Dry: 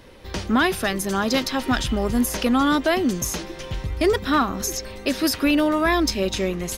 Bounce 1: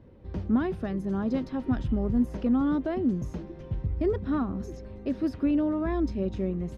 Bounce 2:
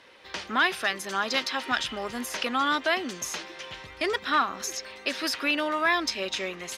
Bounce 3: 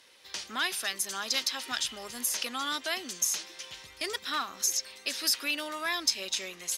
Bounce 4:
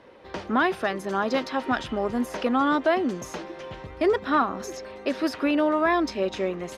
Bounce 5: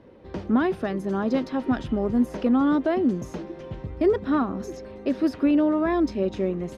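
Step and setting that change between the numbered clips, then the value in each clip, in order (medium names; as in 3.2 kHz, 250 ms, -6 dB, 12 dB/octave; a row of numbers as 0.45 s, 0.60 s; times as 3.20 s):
band-pass filter, frequency: 110 Hz, 2.2 kHz, 6.8 kHz, 750 Hz, 290 Hz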